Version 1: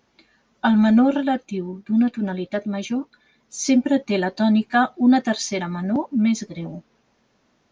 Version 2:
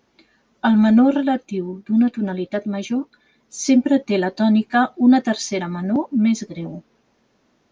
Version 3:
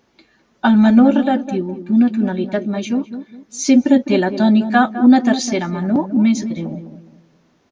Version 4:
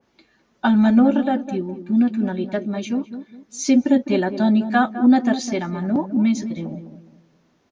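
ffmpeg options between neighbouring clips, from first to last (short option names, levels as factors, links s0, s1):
-af "equalizer=f=340:t=o:w=1.3:g=3.5"
-filter_complex "[0:a]asplit=2[s0][s1];[s1]adelay=206,lowpass=f=810:p=1,volume=0.335,asplit=2[s2][s3];[s3]adelay=206,lowpass=f=810:p=1,volume=0.35,asplit=2[s4][s5];[s5]adelay=206,lowpass=f=810:p=1,volume=0.35,asplit=2[s6][s7];[s7]adelay=206,lowpass=f=810:p=1,volume=0.35[s8];[s0][s2][s4][s6][s8]amix=inputs=5:normalize=0,volume=1.41"
-af "adynamicequalizer=threshold=0.0316:dfrequency=2200:dqfactor=0.7:tfrequency=2200:tqfactor=0.7:attack=5:release=100:ratio=0.375:range=2:mode=cutabove:tftype=highshelf,volume=0.631"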